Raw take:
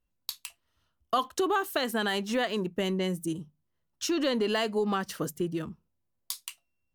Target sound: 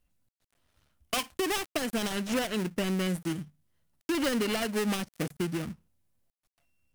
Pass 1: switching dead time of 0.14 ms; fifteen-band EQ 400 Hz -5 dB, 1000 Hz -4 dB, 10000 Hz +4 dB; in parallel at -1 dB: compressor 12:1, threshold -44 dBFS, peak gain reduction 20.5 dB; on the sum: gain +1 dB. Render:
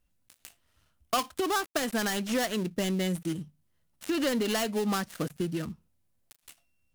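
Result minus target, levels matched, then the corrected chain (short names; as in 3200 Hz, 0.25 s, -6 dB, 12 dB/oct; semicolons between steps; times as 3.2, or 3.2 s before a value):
switching dead time: distortion -5 dB
switching dead time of 0.32 ms; fifteen-band EQ 400 Hz -5 dB, 1000 Hz -4 dB, 10000 Hz +4 dB; in parallel at -1 dB: compressor 12:1, threshold -44 dBFS, peak gain reduction 19 dB; on the sum: gain +1 dB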